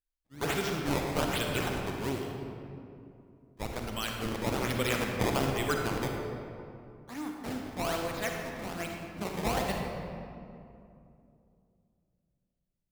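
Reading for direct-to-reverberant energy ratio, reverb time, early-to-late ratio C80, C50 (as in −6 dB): 1.0 dB, 2.6 s, 3.0 dB, 1.5 dB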